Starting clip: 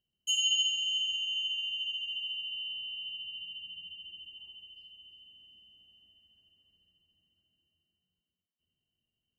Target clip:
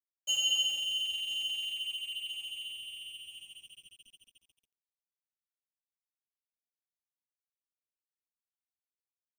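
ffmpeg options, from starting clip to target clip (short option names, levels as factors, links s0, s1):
-af "aecho=1:1:1007|2014|3021:0.1|0.032|0.0102,asubboost=boost=3:cutoff=64,aeval=exprs='sgn(val(0))*max(abs(val(0))-0.00596,0)':c=same"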